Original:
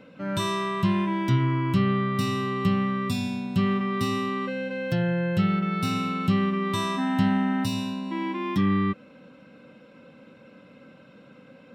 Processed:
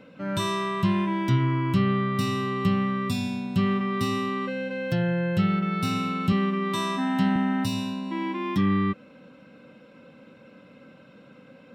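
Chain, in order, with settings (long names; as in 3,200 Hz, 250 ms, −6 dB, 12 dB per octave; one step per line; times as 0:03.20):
0:06.32–0:07.36: high-pass filter 150 Hz 24 dB per octave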